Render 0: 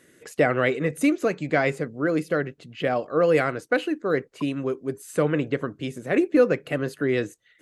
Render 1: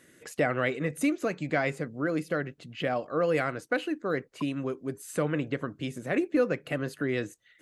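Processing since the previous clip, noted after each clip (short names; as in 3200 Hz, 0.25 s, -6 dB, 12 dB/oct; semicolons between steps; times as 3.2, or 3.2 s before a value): bell 420 Hz -4 dB 0.53 oct; in parallel at 0 dB: compressor, threshold -30 dBFS, peak gain reduction 14.5 dB; on the sum: gain -7 dB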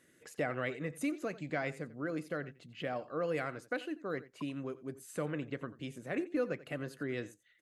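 echo 88 ms -17.5 dB; gain -8.5 dB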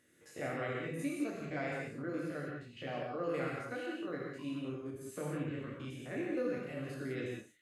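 stepped spectrum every 50 ms; non-linear reverb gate 0.22 s flat, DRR -2.5 dB; gain -4 dB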